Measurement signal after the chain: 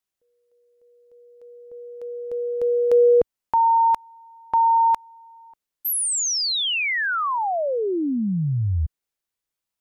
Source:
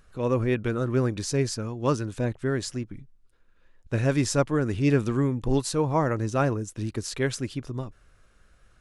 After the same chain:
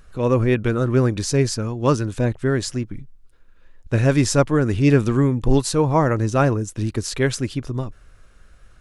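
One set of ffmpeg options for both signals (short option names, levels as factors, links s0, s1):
-af "lowshelf=f=69:g=5.5,volume=2"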